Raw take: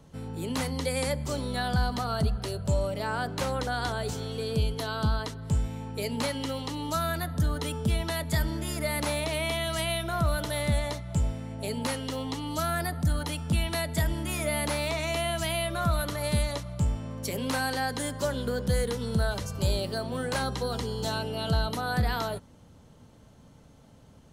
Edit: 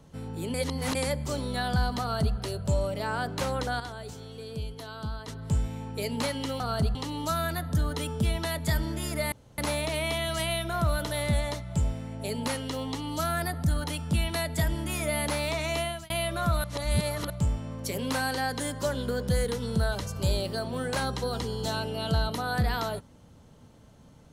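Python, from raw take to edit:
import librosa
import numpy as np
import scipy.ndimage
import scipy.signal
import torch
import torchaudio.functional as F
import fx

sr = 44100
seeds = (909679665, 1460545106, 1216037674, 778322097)

y = fx.edit(x, sr, fx.reverse_span(start_s=0.54, length_s=0.41),
    fx.duplicate(start_s=2.01, length_s=0.35, to_s=6.6),
    fx.clip_gain(start_s=3.8, length_s=1.48, db=-8.5),
    fx.insert_room_tone(at_s=8.97, length_s=0.26),
    fx.fade_out_span(start_s=15.19, length_s=0.3),
    fx.reverse_span(start_s=16.03, length_s=0.66), tone=tone)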